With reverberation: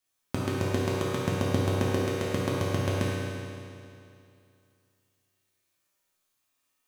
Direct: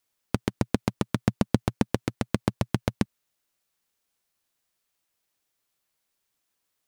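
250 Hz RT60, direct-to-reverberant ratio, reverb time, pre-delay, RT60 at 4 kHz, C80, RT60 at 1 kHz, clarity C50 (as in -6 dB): 2.5 s, -8.0 dB, 2.5 s, 3 ms, 2.4 s, -2.0 dB, 2.5 s, -3.5 dB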